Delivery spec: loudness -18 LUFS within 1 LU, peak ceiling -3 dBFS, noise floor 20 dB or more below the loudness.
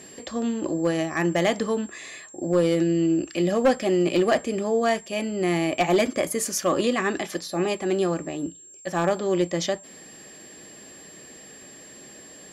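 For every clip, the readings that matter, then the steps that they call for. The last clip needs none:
clipped samples 0.3%; clipping level -13.5 dBFS; steady tone 7.5 kHz; tone level -45 dBFS; loudness -24.5 LUFS; peak level -13.5 dBFS; loudness target -18.0 LUFS
-> clip repair -13.5 dBFS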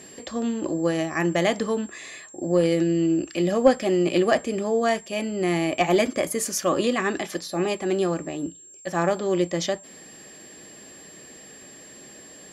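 clipped samples 0.0%; steady tone 7.5 kHz; tone level -45 dBFS
-> band-stop 7.5 kHz, Q 30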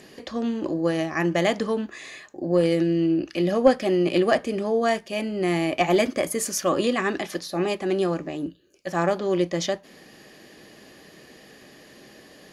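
steady tone not found; loudness -24.0 LUFS; peak level -5.0 dBFS; loudness target -18.0 LUFS
-> trim +6 dB; peak limiter -3 dBFS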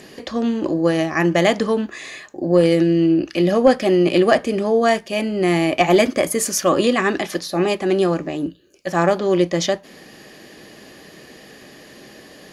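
loudness -18.5 LUFS; peak level -3.0 dBFS; noise floor -44 dBFS

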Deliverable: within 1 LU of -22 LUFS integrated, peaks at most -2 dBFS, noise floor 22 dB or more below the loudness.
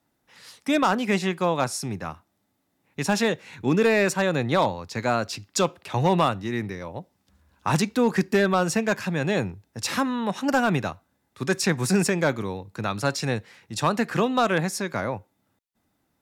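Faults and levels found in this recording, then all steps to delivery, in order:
clipped samples 0.3%; clipping level -12.0 dBFS; loudness -24.5 LUFS; peak level -12.0 dBFS; loudness target -22.0 LUFS
-> clip repair -12 dBFS; trim +2.5 dB

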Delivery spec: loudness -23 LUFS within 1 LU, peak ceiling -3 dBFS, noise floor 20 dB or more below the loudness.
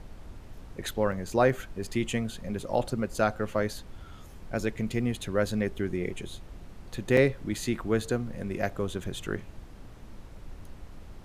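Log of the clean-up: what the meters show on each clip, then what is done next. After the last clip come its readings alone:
dropouts 2; longest dropout 2.7 ms; noise floor -47 dBFS; noise floor target -50 dBFS; loudness -30.0 LUFS; peak level -9.0 dBFS; loudness target -23.0 LUFS
-> interpolate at 1.12/7.17 s, 2.7 ms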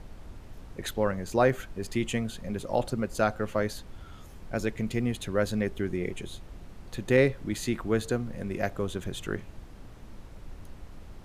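dropouts 0; noise floor -47 dBFS; noise floor target -50 dBFS
-> noise print and reduce 6 dB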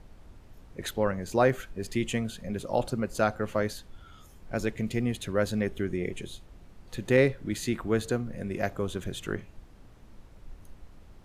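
noise floor -53 dBFS; loudness -30.0 LUFS; peak level -9.0 dBFS; loudness target -23.0 LUFS
-> trim +7 dB; peak limiter -3 dBFS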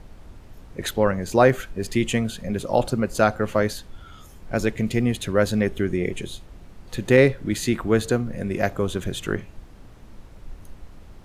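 loudness -23.0 LUFS; peak level -3.0 dBFS; noise floor -46 dBFS

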